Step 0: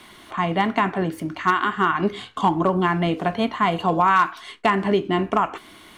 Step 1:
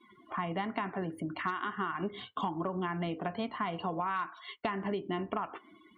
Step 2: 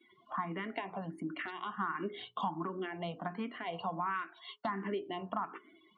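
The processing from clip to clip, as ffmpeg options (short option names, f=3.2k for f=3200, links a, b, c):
-af "afftdn=nr=31:nf=-40,highpass=63,acompressor=threshold=-28dB:ratio=4,volume=-4.5dB"
-filter_complex "[0:a]highpass=150,lowpass=8k,bandreject=f=60:t=h:w=6,bandreject=f=120:t=h:w=6,bandreject=f=180:t=h:w=6,bandreject=f=240:t=h:w=6,bandreject=f=300:t=h:w=6,bandreject=f=360:t=h:w=6,bandreject=f=420:t=h:w=6,asplit=2[a][b];[b]afreqshift=1.4[c];[a][c]amix=inputs=2:normalize=1"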